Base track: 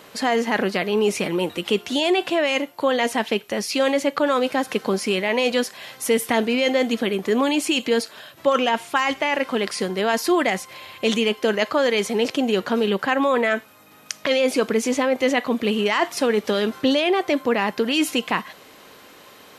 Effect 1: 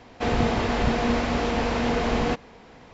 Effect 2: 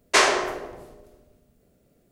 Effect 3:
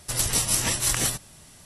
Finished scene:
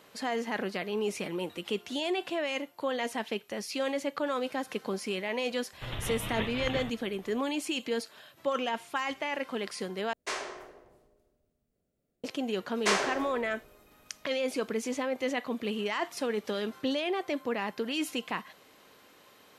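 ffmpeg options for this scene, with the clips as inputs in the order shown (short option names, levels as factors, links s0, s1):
-filter_complex "[2:a]asplit=2[s0][s1];[0:a]volume=0.266[s2];[3:a]aresample=8000,aresample=44100[s3];[s2]asplit=2[s4][s5];[s4]atrim=end=10.134[s6];[s0]atrim=end=2.11,asetpts=PTS-STARTPTS,volume=0.133[s7];[s5]atrim=start=12.236[s8];[s3]atrim=end=1.65,asetpts=PTS-STARTPTS,volume=0.501,afade=t=in:d=0.004:c=hsin,afade=t=out:st=1.646:d=0.004:c=hsin,adelay=252693S[s9];[s1]atrim=end=2.11,asetpts=PTS-STARTPTS,volume=0.335,afade=t=in:d=0.004:c=hsin,afade=t=out:st=2.106:d=0.004:c=hsin,adelay=12720[s10];[s6][s7]acrossfade=d=0.004:c1=hsin:c2=hsin[s11];[s11][s8]acrossfade=d=0.004:c1=hsin:c2=hsin[s12];[s12][s9][s10]amix=inputs=3:normalize=0"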